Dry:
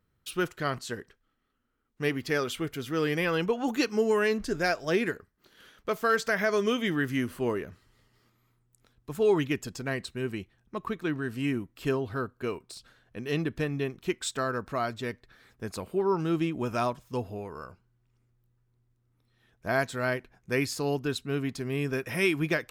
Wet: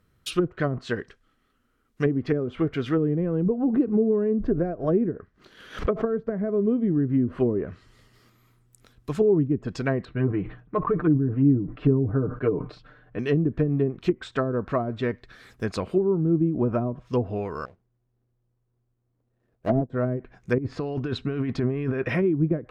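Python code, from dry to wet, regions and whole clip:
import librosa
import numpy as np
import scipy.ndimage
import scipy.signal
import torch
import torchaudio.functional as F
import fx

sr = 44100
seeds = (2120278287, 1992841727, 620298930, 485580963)

y = fx.chain(x, sr, fx.high_shelf(hz=5600.0, db=-10.5),
    fx.pre_swell(db_per_s=150.0), at=(3.4, 6.26))
y = fx.chain(y, sr, fx.lowpass(hz=1600.0, slope=12),
    fx.comb(ms=6.7, depth=0.72),
    fx.sustainer(db_per_s=120.0), at=(10.05, 13.19))
y = fx.chain(y, sr, fx.median_filter(points=41),
    fx.peak_eq(hz=690.0, db=9.0, octaves=2.3),
    fx.upward_expand(threshold_db=-46.0, expansion=1.5), at=(17.65, 19.9))
y = fx.chain(y, sr, fx.lowpass(hz=1700.0, slope=6),
    fx.over_compress(threshold_db=-35.0, ratio=-1.0), at=(20.58, 22.09))
y = fx.env_lowpass_down(y, sr, base_hz=320.0, full_db=-24.5)
y = fx.notch(y, sr, hz=880.0, q=12.0)
y = F.gain(torch.from_numpy(y), 8.5).numpy()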